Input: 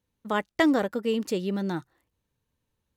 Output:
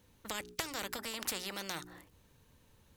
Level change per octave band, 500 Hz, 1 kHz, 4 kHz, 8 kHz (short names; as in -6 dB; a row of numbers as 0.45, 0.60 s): -18.0, -12.0, -1.5, +6.0 dB